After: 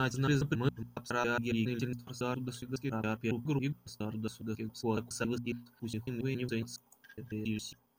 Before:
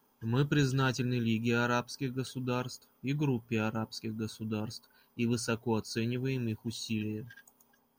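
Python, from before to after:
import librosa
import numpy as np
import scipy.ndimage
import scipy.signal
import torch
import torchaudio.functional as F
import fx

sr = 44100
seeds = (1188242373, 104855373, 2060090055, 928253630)

y = fx.block_reorder(x, sr, ms=138.0, group=7)
y = fx.hum_notches(y, sr, base_hz=60, count=4)
y = fx.dynamic_eq(y, sr, hz=4600.0, q=2.6, threshold_db=-54.0, ratio=4.0, max_db=-5)
y = y * 10.0 ** (-1.5 / 20.0)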